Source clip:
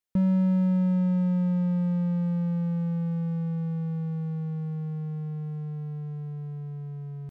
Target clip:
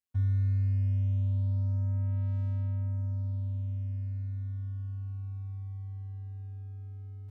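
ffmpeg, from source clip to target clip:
-af "afftfilt=real='hypot(re,im)*cos(PI*b)':imag='0':win_size=1024:overlap=0.75,afreqshift=-270,volume=0.668"

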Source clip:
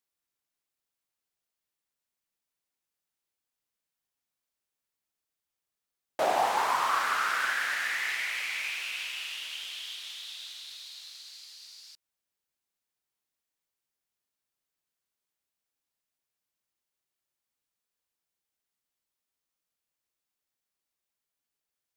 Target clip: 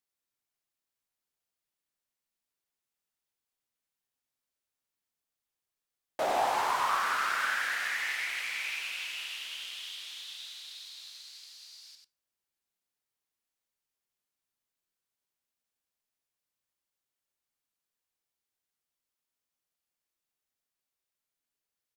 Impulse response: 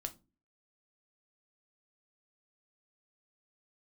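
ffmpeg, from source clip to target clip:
-filter_complex "[0:a]volume=10,asoftclip=hard,volume=0.1,aecho=1:1:93:0.562,asplit=2[s0][s1];[1:a]atrim=start_sample=2205,asetrate=33957,aresample=44100[s2];[s1][s2]afir=irnorm=-1:irlink=0,volume=0.501[s3];[s0][s3]amix=inputs=2:normalize=0,volume=0.501"

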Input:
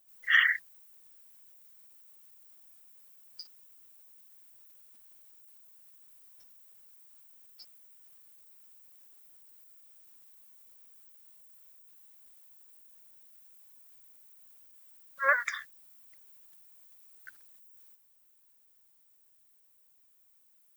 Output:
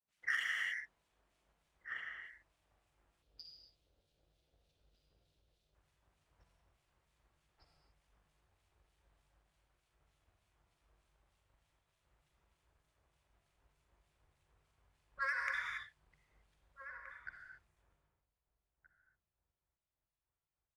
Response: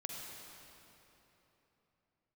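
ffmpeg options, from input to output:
-filter_complex "[0:a]agate=range=0.0224:threshold=0.00178:ratio=3:detection=peak,acrossover=split=2000[s0][s1];[s0]aeval=exprs='val(0)*(1-1/2+1/2*cos(2*PI*3.3*n/s))':c=same[s2];[s1]aeval=exprs='val(0)*(1-1/2-1/2*cos(2*PI*3.3*n/s))':c=same[s3];[s2][s3]amix=inputs=2:normalize=0,adynamicsmooth=sensitivity=7:basefreq=2500[s4];[1:a]atrim=start_sample=2205,afade=t=out:st=0.34:d=0.01,atrim=end_sample=15435[s5];[s4][s5]afir=irnorm=-1:irlink=0,asubboost=boost=10.5:cutoff=67,highpass=42,asplit=2[s6][s7];[s7]adelay=1574,volume=0.2,highshelf=f=4000:g=-35.4[s8];[s6][s8]amix=inputs=2:normalize=0,acompressor=threshold=0.00708:ratio=16,asettb=1/sr,asplit=3[s9][s10][s11];[s9]atrim=end=3.224[s12];[s10]atrim=start=3.22:end=5.75,asetpts=PTS-STARTPTS,afade=t=in:d=0.004:c=qsin,afade=t=out:st=2.526:d=0.004:c=qsin,equalizer=f=500:t=o:w=1:g=5,equalizer=f=1000:t=o:w=1:g=-10,equalizer=f=2000:t=o:w=1:g=-8,equalizer=f=4000:t=o:w=1:g=8,equalizer=f=8000:t=o:w=1:g=-6[s13];[s11]atrim=start=5.746[s14];[s12][s13]acrossfade=d=0.004:c1=hsin:c2=qsin[s15];[s15][s14]acrossfade=d=0.004:c1=qsin:c2=hsin,volume=2.99"

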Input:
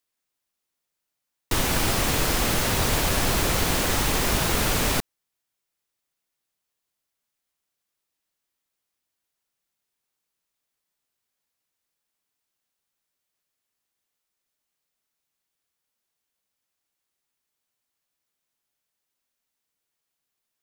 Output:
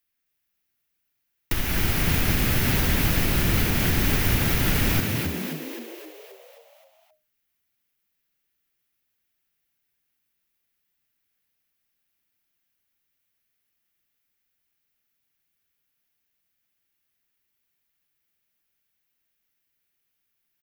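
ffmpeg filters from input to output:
-filter_complex "[0:a]equalizer=f=125:t=o:w=1:g=-4,equalizer=f=250:t=o:w=1:g=-3,equalizer=f=500:t=o:w=1:g=-10,equalizer=f=1000:t=o:w=1:g=-10,equalizer=f=4000:t=o:w=1:g=-6,equalizer=f=8000:t=o:w=1:g=-12,alimiter=limit=0.0944:level=0:latency=1:release=357,asplit=2[s0][s1];[s1]asplit=8[s2][s3][s4][s5][s6][s7][s8][s9];[s2]adelay=263,afreqshift=77,volume=0.631[s10];[s3]adelay=526,afreqshift=154,volume=0.359[s11];[s4]adelay=789,afreqshift=231,volume=0.204[s12];[s5]adelay=1052,afreqshift=308,volume=0.117[s13];[s6]adelay=1315,afreqshift=385,volume=0.0668[s14];[s7]adelay=1578,afreqshift=462,volume=0.038[s15];[s8]adelay=1841,afreqshift=539,volume=0.0216[s16];[s9]adelay=2104,afreqshift=616,volume=0.0123[s17];[s10][s11][s12][s13][s14][s15][s16][s17]amix=inputs=8:normalize=0[s18];[s0][s18]amix=inputs=2:normalize=0,volume=2.37"

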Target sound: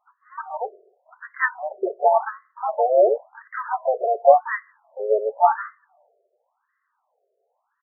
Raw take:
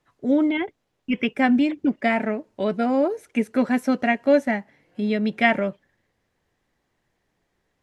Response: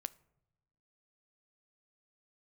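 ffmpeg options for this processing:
-filter_complex "[0:a]highpass=130,lowpass=2000,asplit=3[s0][s1][s2];[s1]asetrate=29433,aresample=44100,atempo=1.49831,volume=0.158[s3];[s2]asetrate=55563,aresample=44100,atempo=0.793701,volume=0.562[s4];[s0][s3][s4]amix=inputs=3:normalize=0,asplit=2[s5][s6];[1:a]atrim=start_sample=2205[s7];[s6][s7]afir=irnorm=-1:irlink=0,volume=3.16[s8];[s5][s8]amix=inputs=2:normalize=0,afftfilt=real='re*between(b*sr/1024,490*pow(1500/490,0.5+0.5*sin(2*PI*0.92*pts/sr))/1.41,490*pow(1500/490,0.5+0.5*sin(2*PI*0.92*pts/sr))*1.41)':imag='im*between(b*sr/1024,490*pow(1500/490,0.5+0.5*sin(2*PI*0.92*pts/sr))/1.41,490*pow(1500/490,0.5+0.5*sin(2*PI*0.92*pts/sr))*1.41)':win_size=1024:overlap=0.75,volume=0.668"

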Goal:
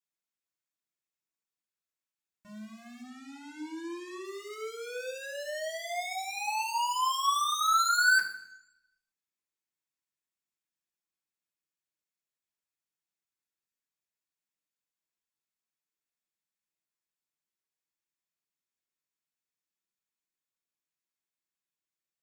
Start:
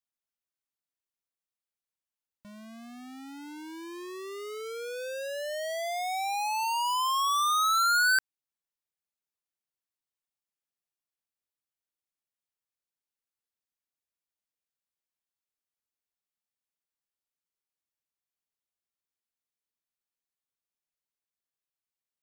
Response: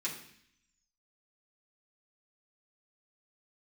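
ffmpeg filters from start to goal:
-filter_complex "[0:a]asettb=1/sr,asplit=3[s0][s1][s2];[s0]atrim=end=3.024[s3];[s1]atrim=start=3.02:end=4.25,asetpts=PTS-STARTPTS,afade=t=in:d=0.004:c=qsin,afade=t=out:st=1.226:d=0.004:c=qsin,lowpass=10000[s4];[s2]atrim=start=4.246[s5];[s3][s4]acrossfade=d=0.004:c1=hsin:c2=qsin[s6];[s6][s5]acrossfade=d=0.004:c1=qsin:c2=hsin[s7];[1:a]atrim=start_sample=2205[s8];[s7][s8]afir=irnorm=-1:irlink=0,volume=0.668"

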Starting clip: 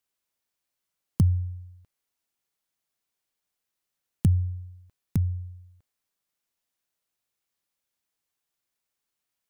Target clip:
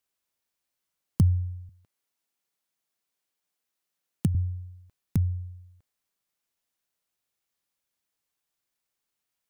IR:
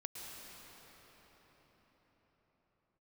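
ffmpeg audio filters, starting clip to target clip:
-filter_complex "[0:a]asettb=1/sr,asplit=3[s0][s1][s2];[s0]atrim=end=1.694[s3];[s1]atrim=start=1.69:end=4.35,asetpts=PTS-STARTPTS,afade=t=in:d=0.004:c=qsin,afade=t=out:st=2.656:d=0.004:c=qsin,highpass=130[s4];[s2]atrim=start=4.346[s5];[s3][s4]acrossfade=d=0.004:c1=hsin:c2=qsin[s6];[s6][s5]acrossfade=d=0.004:c1=qsin:c2=hsin"

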